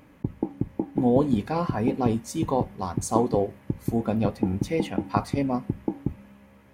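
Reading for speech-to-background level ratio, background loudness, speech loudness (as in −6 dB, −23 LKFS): 5.5 dB, −32.5 LKFS, −27.0 LKFS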